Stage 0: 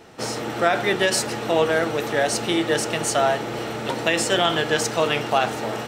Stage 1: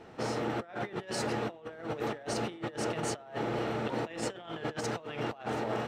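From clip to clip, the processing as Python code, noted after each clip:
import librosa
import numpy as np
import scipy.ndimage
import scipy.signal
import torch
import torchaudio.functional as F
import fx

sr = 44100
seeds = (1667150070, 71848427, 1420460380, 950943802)

y = fx.lowpass(x, sr, hz=1900.0, slope=6)
y = fx.over_compress(y, sr, threshold_db=-28.0, ratio=-0.5)
y = y * librosa.db_to_amplitude(-7.5)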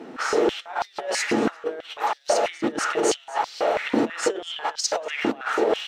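y = fx.dynamic_eq(x, sr, hz=6600.0, q=3.1, threshold_db=-59.0, ratio=4.0, max_db=6)
y = y + 10.0 ** (-20.0 / 20.0) * np.pad(y, (int(241 * sr / 1000.0), 0))[:len(y)]
y = fx.filter_held_highpass(y, sr, hz=6.1, low_hz=260.0, high_hz=4700.0)
y = y * librosa.db_to_amplitude(7.5)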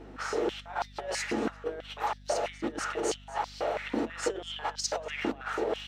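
y = fx.rider(x, sr, range_db=3, speed_s=0.5)
y = fx.add_hum(y, sr, base_hz=50, snr_db=18)
y = y * librosa.db_to_amplitude(-8.0)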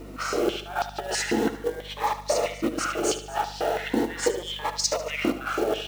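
y = fx.quant_companded(x, sr, bits=6)
y = fx.echo_feedback(y, sr, ms=74, feedback_pct=40, wet_db=-12.5)
y = fx.notch_cascade(y, sr, direction='rising', hz=0.4)
y = y * librosa.db_to_amplitude(7.5)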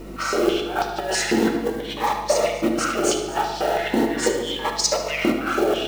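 y = fx.room_shoebox(x, sr, seeds[0], volume_m3=1500.0, walls='mixed', distance_m=1.1)
y = y * librosa.db_to_amplitude(3.5)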